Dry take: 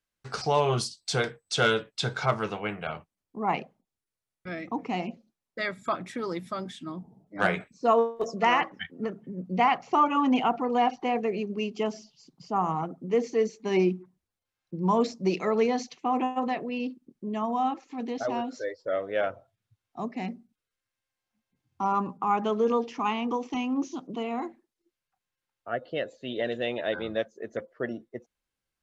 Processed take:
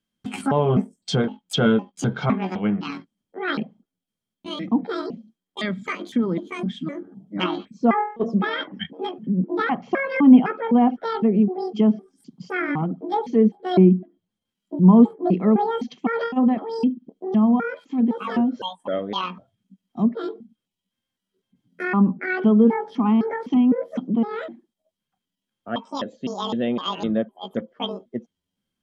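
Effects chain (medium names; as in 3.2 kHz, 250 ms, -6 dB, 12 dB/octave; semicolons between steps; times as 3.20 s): pitch shift switched off and on +10.5 st, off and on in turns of 255 ms; small resonant body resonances 210/3200 Hz, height 18 dB, ringing for 35 ms; low-pass that closes with the level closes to 1.5 kHz, closed at -17.5 dBFS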